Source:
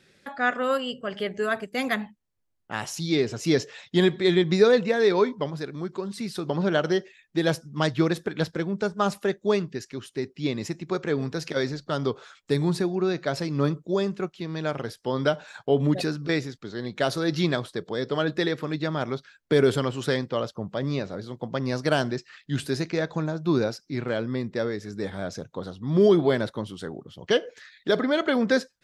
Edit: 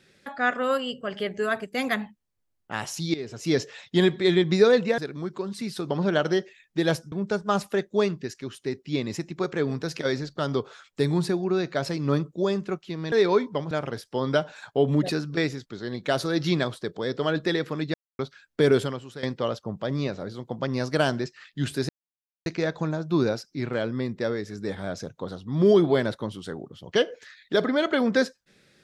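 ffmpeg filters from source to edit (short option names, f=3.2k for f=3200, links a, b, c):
-filter_complex "[0:a]asplit=10[a][b][c][d][e][f][g][h][i][j];[a]atrim=end=3.14,asetpts=PTS-STARTPTS,afade=t=out:st=3.136:d=0.004:c=hsin:silence=0.16788[k];[b]atrim=start=3.14:end=4.982,asetpts=PTS-STARTPTS,afade=t=in:d=0.48:silence=0.16788[l];[c]atrim=start=5.568:end=7.712[m];[d]atrim=start=8.628:end=14.632[n];[e]atrim=start=4.978:end=5.572[o];[f]atrim=start=14.628:end=18.86,asetpts=PTS-STARTPTS,afade=t=out:st=4.228:d=0.004:c=hsin[p];[g]atrim=start=18.86:end=19.11,asetpts=PTS-STARTPTS,volume=0[q];[h]atrim=start=19.11:end=20.15,asetpts=PTS-STARTPTS,afade=t=in:d=0.004:c=hsin,afade=t=out:st=0.56:d=0.48:c=qua:silence=0.188365[r];[i]atrim=start=20.15:end=22.81,asetpts=PTS-STARTPTS,afade=t=in:d=0.004:c=hsin:silence=0.188365,afade=t=out:st=2.656:d=0.004:c=hsin,apad=pad_dur=0.57[s];[j]atrim=start=22.81,asetpts=PTS-STARTPTS,afade=t=in:d=0.004:c=hsin[t];[k][l]concat=n=2:v=0:a=1[u];[u][m]acrossfade=d=0.004:c1=hsin:c2=hsin[v];[v][n]acrossfade=d=0.004:c1=hsin:c2=hsin[w];[w][o]acrossfade=d=0.004:c1=hsin:c2=hsin[x];[p][q][r][s][t]concat=n=5:v=0:a=1[y];[x][y]acrossfade=d=0.004:c1=hsin:c2=hsin"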